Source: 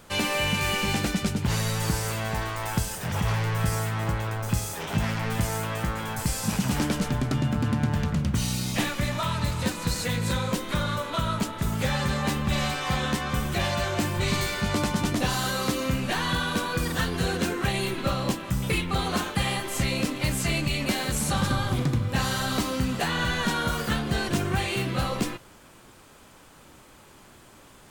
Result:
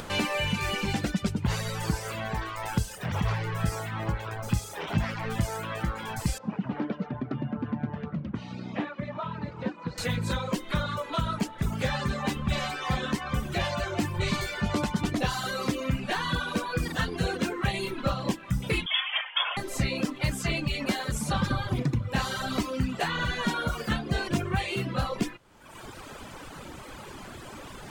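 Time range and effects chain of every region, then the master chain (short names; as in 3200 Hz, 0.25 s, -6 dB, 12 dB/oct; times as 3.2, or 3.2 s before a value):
6.38–9.98 HPF 180 Hz + tape spacing loss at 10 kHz 40 dB
18.86–19.57 careless resampling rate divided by 8×, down none, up filtered + inverted band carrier 3400 Hz
whole clip: reverb removal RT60 1.2 s; high shelf 6700 Hz -9.5 dB; upward compressor, threshold -30 dBFS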